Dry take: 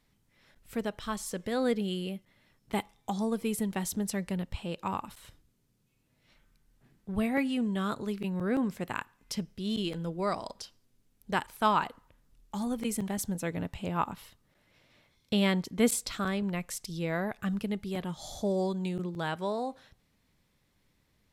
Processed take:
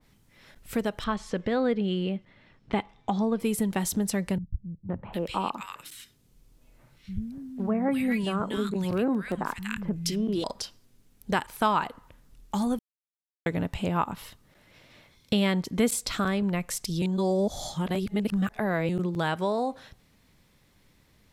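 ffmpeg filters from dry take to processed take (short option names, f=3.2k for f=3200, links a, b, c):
-filter_complex "[0:a]asettb=1/sr,asplit=3[a][b][c];[a]atrim=end=1.044[d];[b]atrim=start=1.04:end=3.4,asetpts=PTS-STARTPTS,afade=t=in:d=0.004:c=qsin,afade=t=out:st=2.356:d=0.004:c=qsin,lowpass=3.4k[e];[c]atrim=start=3.396[f];[d][e]acrossfade=d=0.004:c1=hsin:c2=qsin[g];[g][f]acrossfade=d=0.004:c1=qsin:c2=hsin,asettb=1/sr,asplit=3[h][i][j];[h]atrim=end=4.384[k];[i]atrim=start=4.38:end=10.44,asetpts=PTS-STARTPTS,afade=t=in:d=0.004:c=qsin,afade=t=out:st=6.056:d=0.004:c=qsin,acrossover=split=160|1600[l][m][n];[m]adelay=510[o];[n]adelay=750[p];[l][o][p]amix=inputs=3:normalize=0,atrim=end_sample=267246[q];[j]atrim=start=10.436[r];[k][q]acrossfade=d=0.004:c1=hsin:c2=qsin[s];[s][r]acrossfade=d=0.004:c1=qsin:c2=hsin,asplit=5[t][u][v][w][x];[t]atrim=end=12.79,asetpts=PTS-STARTPTS,afade=t=out:st=12.786:d=0.004:c=hsin[y];[u]atrim=start=12.79:end=13.46,asetpts=PTS-STARTPTS,volume=0[z];[v]atrim=start=13.46:end=17.022,asetpts=PTS-STARTPTS,afade=t=in:d=0.004:c=hsin[aa];[w]atrim=start=17.018:end=18.892,asetpts=PTS-STARTPTS,areverse[ab];[x]atrim=start=18.888[ac];[y][z][aa]concat=n=3:v=0:a=1[ad];[ad][ab]acrossfade=d=0.004:c1=hsin:c2=hsin[ae];[ae][ac]acrossfade=d=0.004:c1=hsin:c2=hsin,acompressor=threshold=-35dB:ratio=2,adynamicequalizer=threshold=0.00355:dfrequency=1900:dqfactor=0.7:tfrequency=1900:tqfactor=0.7:attack=5:release=100:ratio=0.375:range=1.5:mode=cutabove:tftype=highshelf,volume=9dB"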